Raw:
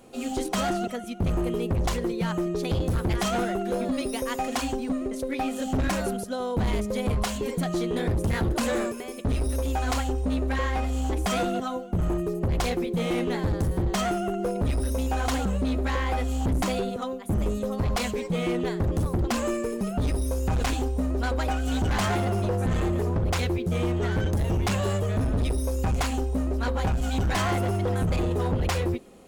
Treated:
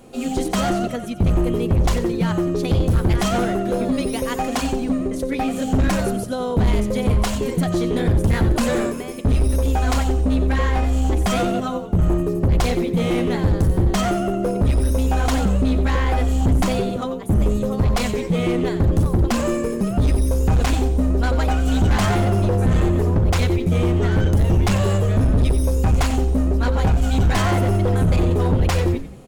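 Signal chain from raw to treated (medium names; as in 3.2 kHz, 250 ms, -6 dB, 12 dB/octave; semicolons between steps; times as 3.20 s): bass shelf 290 Hz +5 dB; frequency-shifting echo 91 ms, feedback 38%, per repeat -76 Hz, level -12 dB; trim +4 dB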